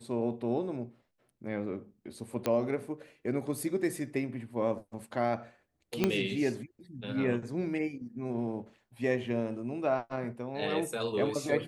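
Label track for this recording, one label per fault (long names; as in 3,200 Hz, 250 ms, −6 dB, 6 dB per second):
2.460000	2.460000	click −15 dBFS
6.040000	6.040000	click −12 dBFS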